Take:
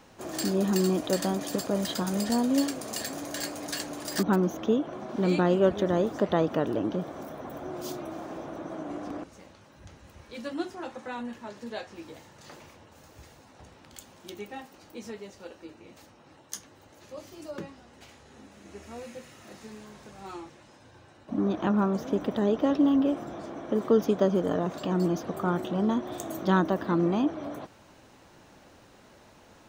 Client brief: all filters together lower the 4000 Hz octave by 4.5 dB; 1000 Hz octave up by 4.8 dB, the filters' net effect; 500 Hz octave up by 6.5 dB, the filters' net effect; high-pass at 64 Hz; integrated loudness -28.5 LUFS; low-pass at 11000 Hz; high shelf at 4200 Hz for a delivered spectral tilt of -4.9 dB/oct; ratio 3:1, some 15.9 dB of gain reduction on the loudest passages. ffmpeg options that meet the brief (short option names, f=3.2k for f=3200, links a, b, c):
-af "highpass=64,lowpass=11k,equalizer=f=500:t=o:g=7.5,equalizer=f=1k:t=o:g=3.5,equalizer=f=4k:t=o:g=-8.5,highshelf=f=4.2k:g=4,acompressor=threshold=-33dB:ratio=3,volume=7.5dB"